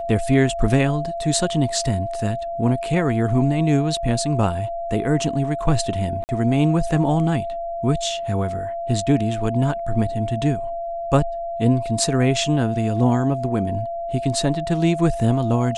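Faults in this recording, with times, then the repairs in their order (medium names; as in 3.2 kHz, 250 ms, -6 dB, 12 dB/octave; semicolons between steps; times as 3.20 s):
whine 680 Hz -25 dBFS
6.24–6.29 s: dropout 49 ms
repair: band-stop 680 Hz, Q 30; interpolate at 6.24 s, 49 ms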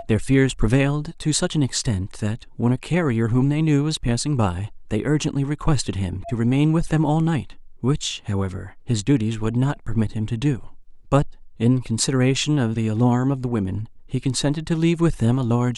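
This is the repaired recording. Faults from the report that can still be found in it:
nothing left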